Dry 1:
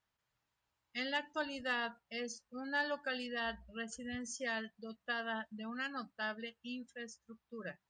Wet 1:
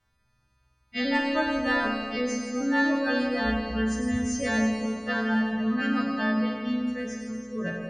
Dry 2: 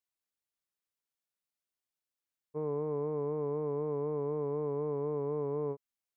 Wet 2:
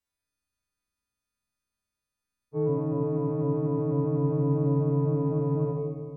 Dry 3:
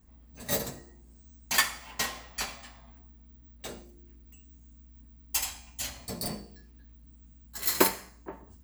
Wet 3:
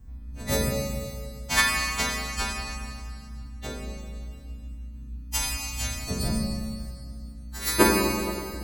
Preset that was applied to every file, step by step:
partials quantised in pitch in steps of 2 st; RIAA curve playback; Schroeder reverb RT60 2.3 s, combs from 32 ms, DRR -0.5 dB; normalise loudness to -27 LUFS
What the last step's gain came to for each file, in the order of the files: +8.5 dB, +2.5 dB, +2.5 dB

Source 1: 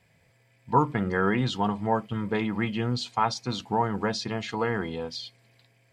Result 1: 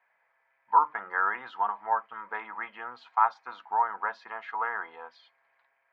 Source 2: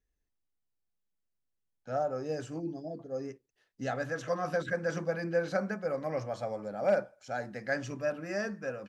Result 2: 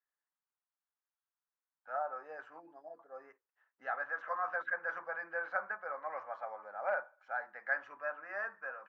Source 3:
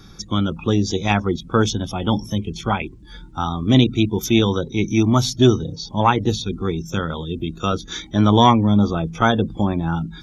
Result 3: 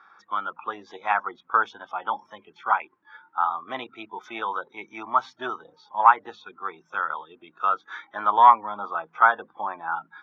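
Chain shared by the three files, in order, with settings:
Butterworth band-pass 1.2 kHz, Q 1.4; trim +3.5 dB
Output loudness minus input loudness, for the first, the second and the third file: -2.0 LU, -5.0 LU, -4.5 LU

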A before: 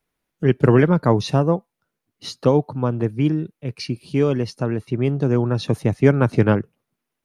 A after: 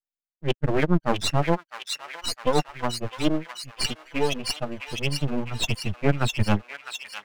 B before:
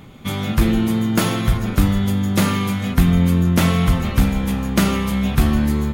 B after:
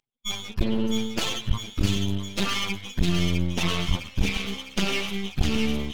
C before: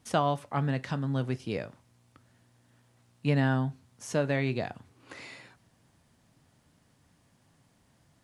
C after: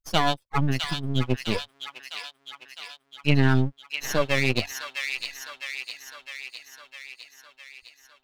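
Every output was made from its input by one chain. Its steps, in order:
expander on every frequency bin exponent 3; high-order bell 4.1 kHz +14 dB; reverse; compression 4:1, threshold -31 dBFS; reverse; tone controls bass +2 dB, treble -10 dB; half-wave rectifier; on a send: feedback echo behind a high-pass 657 ms, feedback 63%, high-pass 1.7 kHz, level -3 dB; on the sum: normalise loudness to -27 LUFS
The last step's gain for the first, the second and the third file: +14.0 dB, +10.5 dB, +16.0 dB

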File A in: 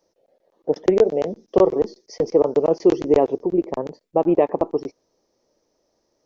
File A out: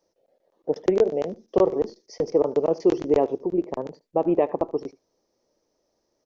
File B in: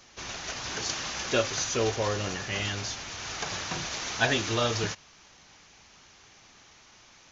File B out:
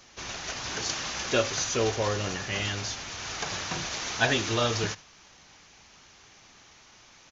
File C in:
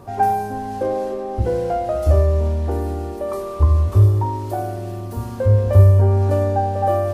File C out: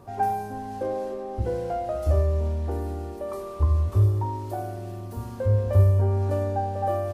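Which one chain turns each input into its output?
delay 76 ms -20.5 dB; peak normalisation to -9 dBFS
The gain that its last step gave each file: -4.0 dB, +0.5 dB, -7.0 dB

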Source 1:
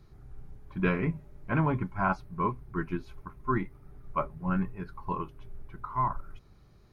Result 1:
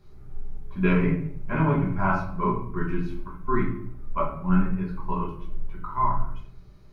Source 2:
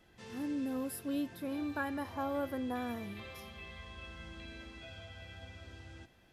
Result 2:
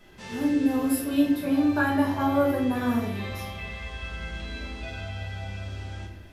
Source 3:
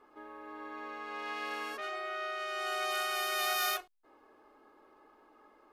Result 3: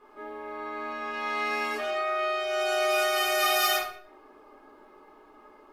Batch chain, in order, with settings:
simulated room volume 96 m³, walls mixed, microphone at 1.3 m; normalise loudness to -27 LUFS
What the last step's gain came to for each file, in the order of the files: -2.0 dB, +6.5 dB, +2.0 dB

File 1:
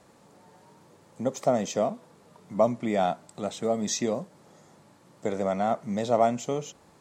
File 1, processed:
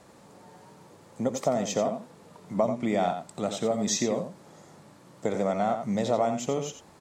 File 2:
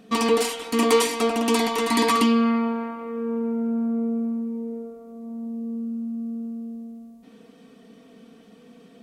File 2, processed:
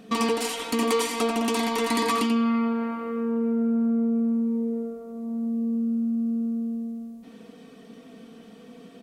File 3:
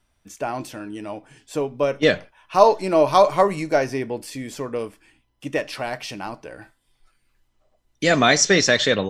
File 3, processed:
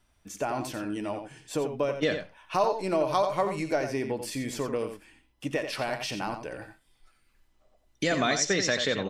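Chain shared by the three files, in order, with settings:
compression 2.5:1, threshold -27 dBFS; echo from a far wall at 15 m, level -8 dB; peak normalisation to -12 dBFS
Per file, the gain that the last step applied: +3.0 dB, +2.5 dB, -0.5 dB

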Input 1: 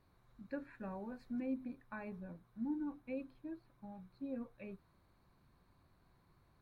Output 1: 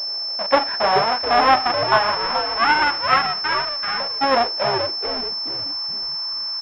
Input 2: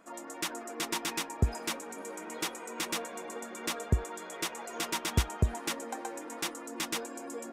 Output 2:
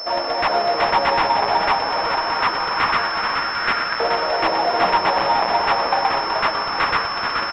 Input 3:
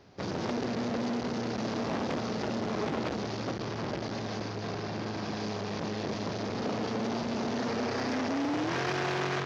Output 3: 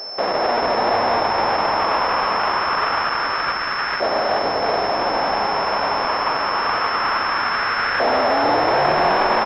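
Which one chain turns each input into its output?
square wave that keeps the level; in parallel at +2 dB: peak limiter -28 dBFS; on the sum: LFO high-pass saw up 0.25 Hz 610–1500 Hz; saturation -18.5 dBFS; on a send: frequency-shifting echo 429 ms, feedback 34%, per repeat -140 Hz, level -6.5 dB; on the sum: class-D stage that switches slowly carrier 5.3 kHz; normalise loudness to -19 LUFS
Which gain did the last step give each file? +17.5 dB, +9.0 dB, +6.5 dB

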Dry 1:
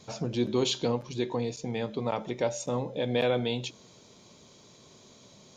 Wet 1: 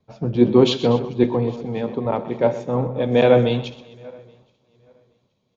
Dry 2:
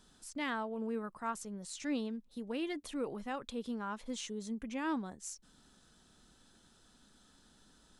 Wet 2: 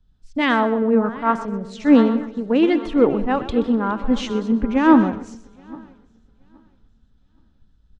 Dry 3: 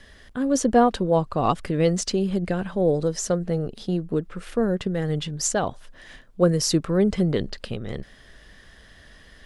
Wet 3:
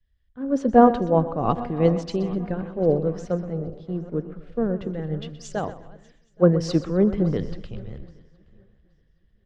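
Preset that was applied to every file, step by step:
backward echo that repeats 411 ms, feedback 63%, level -13 dB; tape spacing loss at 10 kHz 34 dB; feedback delay 127 ms, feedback 45%, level -12 dB; three bands expanded up and down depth 100%; peak normalisation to -2 dBFS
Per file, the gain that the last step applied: +10.5 dB, +21.5 dB, -0.5 dB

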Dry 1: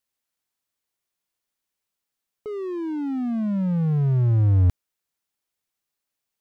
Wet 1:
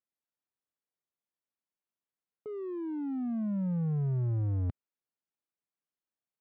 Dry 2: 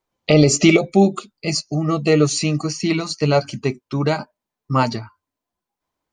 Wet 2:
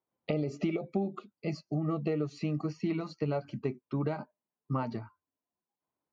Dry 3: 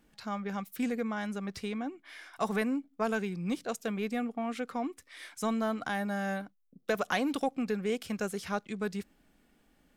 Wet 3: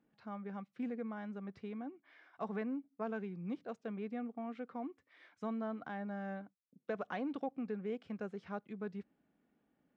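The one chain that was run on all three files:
high-pass 120 Hz 12 dB/octave; compression 12:1, threshold -19 dBFS; tape spacing loss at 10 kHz 38 dB; trim -6.5 dB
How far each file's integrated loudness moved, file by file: -10.5 LU, -16.0 LU, -8.5 LU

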